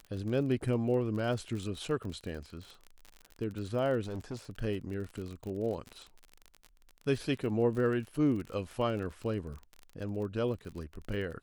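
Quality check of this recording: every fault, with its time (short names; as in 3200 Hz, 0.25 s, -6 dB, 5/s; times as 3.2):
crackle 37/s -38 dBFS
4.01–4.39 clipped -34 dBFS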